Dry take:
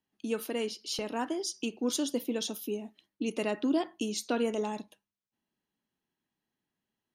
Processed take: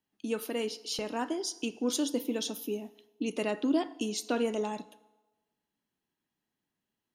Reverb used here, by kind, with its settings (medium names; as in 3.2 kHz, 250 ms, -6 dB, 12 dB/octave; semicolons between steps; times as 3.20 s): FDN reverb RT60 1.2 s, low-frequency decay 0.75×, high-frequency decay 0.8×, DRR 16 dB